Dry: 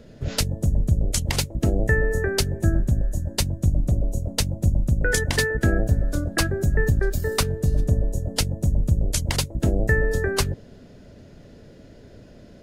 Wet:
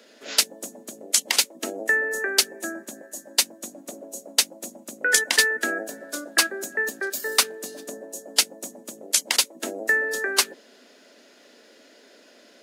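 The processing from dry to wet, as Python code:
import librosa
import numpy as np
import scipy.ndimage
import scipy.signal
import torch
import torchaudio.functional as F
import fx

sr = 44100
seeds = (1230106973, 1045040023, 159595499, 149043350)

y = scipy.signal.sosfilt(scipy.signal.butter(8, 230.0, 'highpass', fs=sr, output='sos'), x)
y = fx.tilt_shelf(y, sr, db=-8.5, hz=700.0)
y = F.gain(torch.from_numpy(y), -1.5).numpy()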